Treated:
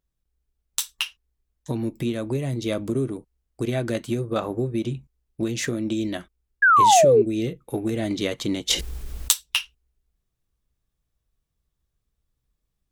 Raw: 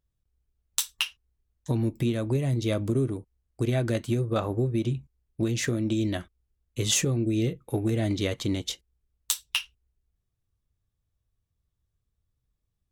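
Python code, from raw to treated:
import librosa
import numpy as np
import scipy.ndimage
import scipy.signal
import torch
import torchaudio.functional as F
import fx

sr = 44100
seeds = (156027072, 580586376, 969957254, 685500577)

y = fx.peak_eq(x, sr, hz=94.0, db=-12.0, octaves=0.62)
y = fx.rider(y, sr, range_db=10, speed_s=2.0)
y = fx.spec_paint(y, sr, seeds[0], shape='fall', start_s=6.62, length_s=0.6, low_hz=390.0, high_hz=1700.0, level_db=-17.0)
y = fx.env_flatten(y, sr, amount_pct=70, at=(8.69, 9.31), fade=0.02)
y = F.gain(torch.from_numpy(y), 2.5).numpy()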